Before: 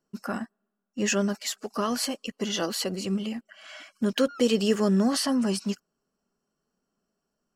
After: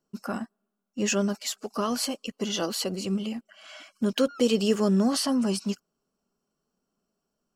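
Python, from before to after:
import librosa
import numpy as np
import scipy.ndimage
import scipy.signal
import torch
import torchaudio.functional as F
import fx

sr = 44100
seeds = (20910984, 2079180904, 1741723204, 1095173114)

y = fx.peak_eq(x, sr, hz=1800.0, db=-6.5, octaves=0.4)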